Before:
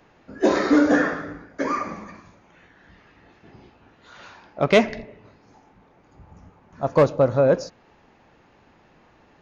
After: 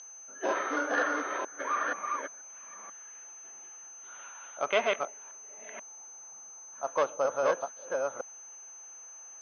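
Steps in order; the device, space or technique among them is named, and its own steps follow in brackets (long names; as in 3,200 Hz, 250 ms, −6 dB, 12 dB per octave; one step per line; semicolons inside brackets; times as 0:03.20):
delay that plays each chunk backwards 483 ms, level −2 dB
toy sound module (linearly interpolated sample-rate reduction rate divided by 4×; switching amplifier with a slow clock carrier 6,200 Hz; loudspeaker in its box 790–4,100 Hz, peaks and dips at 1,400 Hz +3 dB, 1,900 Hz −4 dB, 3,100 Hz +7 dB)
level −4.5 dB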